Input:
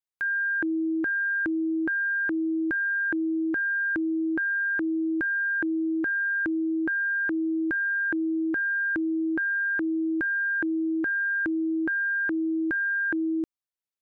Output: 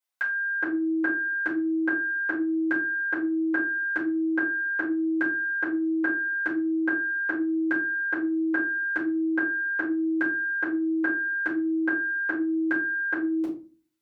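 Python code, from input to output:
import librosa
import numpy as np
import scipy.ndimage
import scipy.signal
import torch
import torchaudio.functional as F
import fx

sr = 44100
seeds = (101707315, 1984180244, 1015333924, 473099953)

y = fx.highpass(x, sr, hz=780.0, slope=6)
y = fx.room_shoebox(y, sr, seeds[0], volume_m3=190.0, walls='furnished', distance_m=4.9)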